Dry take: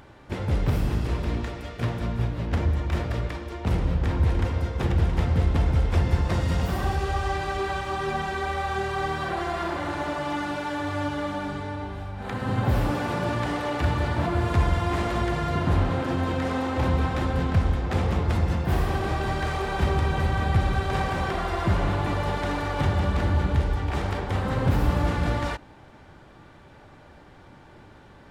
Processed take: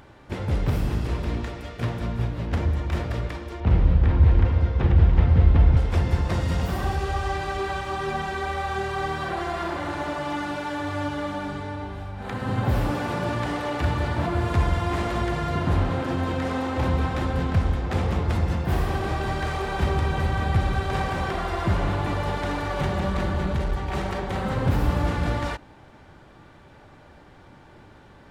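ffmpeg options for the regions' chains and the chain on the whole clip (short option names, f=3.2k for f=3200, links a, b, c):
-filter_complex "[0:a]asettb=1/sr,asplit=3[a][b][c];[a]atrim=end=3.604[d];[b]atrim=start=3.6:end=5.77,asetpts=PTS-STARTPTS,afade=t=in:d=0.004:c=qsin,afade=t=out:st=2.166:d=0.004:c=qsin,lowpass=4.9k,lowshelf=f=99:g=9.5,acrossover=split=3600[e][f];[f]acompressor=threshold=-57dB:ratio=4:attack=1:release=60[g];[e][g]amix=inputs=2:normalize=0[h];[c]atrim=start=5.766[i];[d][h]acrossfade=d=0.004:c1=hsin:c2=qsin[j];[j][i]acrossfade=d=0.004:c1=qsin:c2=hsin,asettb=1/sr,asplit=3[k][l][m];[k]atrim=end=22.704[n];[l]atrim=start=22.7:end=24.53,asetpts=PTS-STARTPTS,afade=t=in:d=0.004:c=qsin,afade=t=out:st=1.826:d=0.004:c=qsin,bandreject=f=5.2k:w=28,aecho=1:1:5.3:0.52,atrim=end_sample=80703,aeval=exprs='clip(val(0),-1,0.0841)':c=same[o];[m]atrim=start=24.526[p];[n][o]acrossfade=d=0.004:c1=hsin:c2=qsin[q];[q][p]acrossfade=d=0.004:c1=qsin:c2=hsin"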